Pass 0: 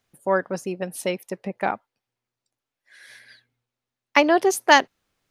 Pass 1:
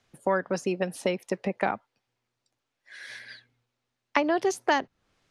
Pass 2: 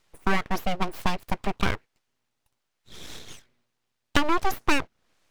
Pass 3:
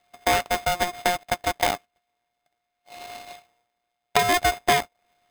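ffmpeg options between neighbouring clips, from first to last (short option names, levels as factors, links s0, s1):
-filter_complex "[0:a]acrossover=split=200|1600[s0][s1][s2];[s0]acompressor=threshold=0.00631:ratio=4[s3];[s1]acompressor=threshold=0.0316:ratio=4[s4];[s2]acompressor=threshold=0.01:ratio=4[s5];[s3][s4][s5]amix=inputs=3:normalize=0,lowpass=7200,volume=1.78"
-af "aeval=exprs='abs(val(0))':c=same,volume=1.58"
-af "aresample=8000,aresample=44100,aeval=exprs='val(0)*sgn(sin(2*PI*710*n/s))':c=same"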